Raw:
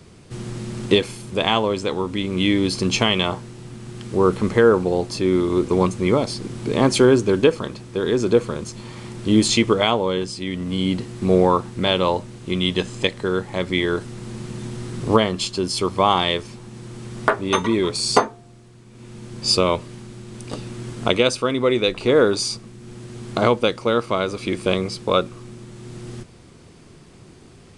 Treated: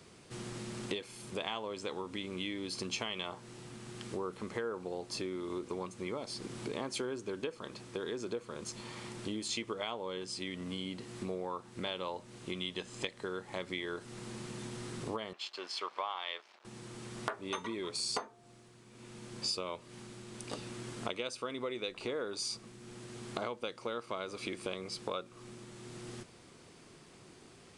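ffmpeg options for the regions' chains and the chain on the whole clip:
-filter_complex "[0:a]asettb=1/sr,asplit=3[a][b][c];[a]atrim=end=15.334[d];[b]atrim=start=15.33:end=16.65,asetpts=PTS-STARTPTS,afade=t=in:d=0.004:c=qsin,afade=t=out:st=1.316:d=0.004:c=qsin,aeval=exprs='sgn(val(0))*max(abs(val(0))-0.0126,0)':c=same,highpass=760,lowpass=3.4k[e];[c]atrim=start=16.646[f];[d][e]acrossfade=d=0.004:c1=hsin:c2=qsin[g];[g][f]acrossfade=d=0.004:c1=qsin:c2=hsin,lowshelf=f=120:g=-9,acompressor=threshold=-28dB:ratio=6,lowshelf=f=370:g=-5.5,volume=-5.5dB"

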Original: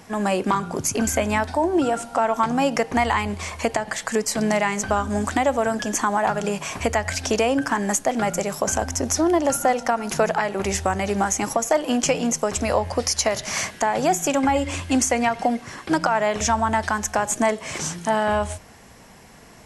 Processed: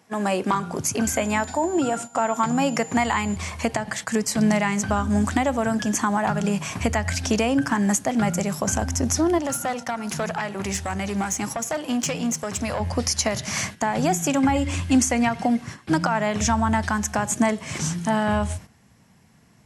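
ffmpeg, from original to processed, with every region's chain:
-filter_complex "[0:a]asettb=1/sr,asplit=3[a][b][c];[a]atrim=end=1.134[d];[b]atrim=start=1.13:end=3.36,asetpts=PTS-STARTPTS,afade=t=in:d=0.004:c=qsin,afade=t=out:st=2.226:d=0.004:c=qsin,highpass=110,aeval=exprs='val(0)+0.0126*sin(2*PI*7100*n/s)':c=same[e];[c]atrim=start=3.356[f];[d][e]acrossfade=d=0.004:c1=hsin:c2=qsin[g];[g][f]acrossfade=d=0.004:c1=qsin:c2=hsin,asettb=1/sr,asplit=3[h][i][j];[h]atrim=end=9.384[k];[i]atrim=start=9.38:end=12.8,asetpts=PTS-STARTPTS,afade=t=in:d=0.004:c=qsin,afade=t=out:st=3.416:d=0.004:c=qsin,highpass=62,aeval=exprs='(tanh(5.62*val(0)+0.25)-tanh(0.25))/5.62':c=same,lowshelf=f=390:g=-5[l];[j]atrim=start=12.796[m];[k][l]acrossfade=d=0.004:c1=hsin:c2=qsin[n];[n][m]acrossfade=d=0.004:c1=qsin:c2=hsin,asubboost=boost=5:cutoff=190,agate=range=-11dB:threshold=-31dB:ratio=16:detection=peak,highpass=120,volume=-1dB"

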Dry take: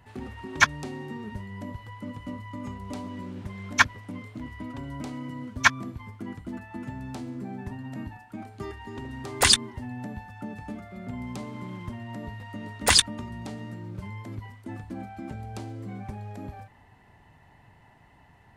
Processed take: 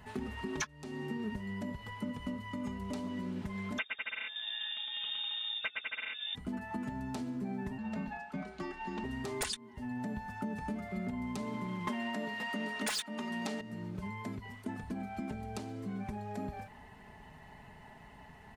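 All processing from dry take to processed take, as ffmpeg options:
-filter_complex "[0:a]asettb=1/sr,asplit=3[a][b][c];[a]atrim=end=3.784[d];[b]atrim=start=3.78:end=6.35,asetpts=PTS-STARTPTS,afade=t=in:d=0.004:c=qsin,afade=t=out:st=2.566:d=0.004:c=qsin,highpass=61,aecho=1:1:110|198|268.4|324.7|369.8|405.8|434.7|457.7:0.794|0.631|0.501|0.398|0.316|0.251|0.2|0.158,atrim=end_sample=113337,lowpass=f=3.2k:t=q:w=0.5098,lowpass=f=3.2k:t=q:w=0.6013,lowpass=f=3.2k:t=q:w=0.9,lowpass=f=3.2k:t=q:w=2.563,afreqshift=-3800[e];[c]atrim=start=6.346[f];[d][e]acrossfade=d=0.004:c1=hsin:c2=qsin[g];[g][f]acrossfade=d=0.004:c1=qsin:c2=hsin,asettb=1/sr,asplit=3[h][i][j];[h]atrim=end=7.784[k];[i]atrim=start=7.78:end=9.04,asetpts=PTS-STARTPTS,afade=t=in:d=0.004:c=qsin,afade=t=out:st=1.256:d=0.004:c=qsin,acrossover=split=220 6900:gain=0.141 1 0.126[l][m][n];[l][m][n]amix=inputs=3:normalize=0,afreqshift=-43[o];[j]atrim=start=9.036[p];[k][o]acrossfade=d=0.004:c1=hsin:c2=qsin[q];[q][p]acrossfade=d=0.004:c1=qsin:c2=hsin,asettb=1/sr,asplit=3[r][s][t];[r]atrim=end=11.874[u];[s]atrim=start=11.87:end=13.61,asetpts=PTS-STARTPTS,afade=t=in:d=0.004:c=qsin,afade=t=out:st=1.736:d=0.004:c=qsin,lowshelf=f=130:t=q:w=1.5:g=-13,asplit=2[v][w];[w]highpass=f=720:p=1,volume=24dB,asoftclip=type=tanh:threshold=-3dB[x];[v][x]amix=inputs=2:normalize=0,lowpass=f=8k:p=1,volume=-6dB[y];[t]atrim=start=13.606[z];[u][y]acrossfade=d=0.004:c1=hsin:c2=qsin[aa];[aa][z]acrossfade=d=0.004:c1=qsin:c2=hsin,acompressor=threshold=-38dB:ratio=16,aecho=1:1:4.7:0.54,volume=2.5dB"

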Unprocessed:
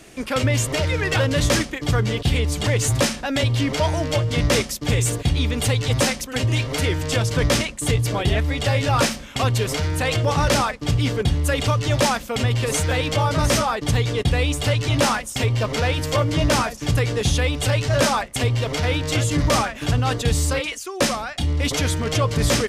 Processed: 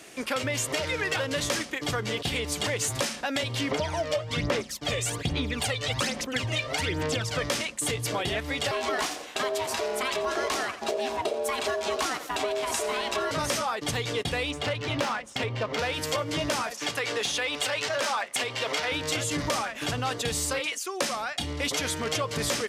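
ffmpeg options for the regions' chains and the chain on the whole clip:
-filter_complex "[0:a]asettb=1/sr,asplit=3[a][b][c];[a]atrim=end=3.714[d];[b]atrim=start=3.71:end=7.44,asetpts=PTS-STARTPTS,afade=t=in:d=0.004:c=qsin,afade=t=out:st=3.726:d=0.004:c=qsin,aphaser=in_gain=1:out_gain=1:delay=1.7:decay=0.63:speed=1.2:type=sinusoidal,highshelf=f=7.5k:g=-10[e];[c]atrim=start=7.436[f];[d][e]acrossfade=d=0.004:c1=hsin:c2=qsin[g];[g][f]acrossfade=d=0.004:c1=qsin:c2=hsin,asettb=1/sr,asplit=3[h][i][j];[h]atrim=end=8.714[k];[i]atrim=start=8.71:end=13.31,asetpts=PTS-STARTPTS,afade=t=in:d=0.004:c=qsin,afade=t=out:st=4.596:d=0.004:c=qsin,aeval=exprs='val(0)*sin(2*PI*520*n/s)':c=same,aecho=1:1:85|170|255|340:0.158|0.065|0.0266|0.0109,atrim=end_sample=202860[l];[j]atrim=start=13.306[m];[k][l]acrossfade=d=0.004:c1=hsin:c2=qsin[n];[n][m]acrossfade=d=0.004:c1=qsin:c2=hsin,asettb=1/sr,asplit=3[o][p][q];[o]atrim=end=14.514[r];[p]atrim=start=14.51:end=15.79,asetpts=PTS-STARTPTS,afade=t=in:d=0.004:c=qsin,afade=t=out:st=1.276:d=0.004:c=qsin,highshelf=f=5k:g=8,adynamicsmooth=sensitivity=0.5:basefreq=2.3k[s];[q]atrim=start=15.786[t];[r][s]acrossfade=d=0.004:c1=hsin:c2=qsin[u];[u][t]acrossfade=d=0.004:c1=qsin:c2=hsin,asettb=1/sr,asplit=3[v][w][x];[v]atrim=end=16.714[y];[w]atrim=start=16.71:end=18.92,asetpts=PTS-STARTPTS,afade=t=in:d=0.004:c=qsin,afade=t=out:st=2.206:d=0.004:c=qsin,acompressor=threshold=-20dB:ratio=2.5:attack=3.2:release=140:knee=1:detection=peak,asplit=2[z][aa];[aa]highpass=f=720:p=1,volume=10dB,asoftclip=type=tanh:threshold=-11.5dB[ab];[z][ab]amix=inputs=2:normalize=0,lowpass=f=5k:p=1,volume=-6dB,highpass=f=170:p=1[ac];[x]atrim=start=18.916[ad];[y][ac]acrossfade=d=0.004:c1=hsin:c2=qsin[ae];[ae][ad]acrossfade=d=0.004:c1=qsin:c2=hsin,highpass=f=440:p=1,acompressor=threshold=-25dB:ratio=6"

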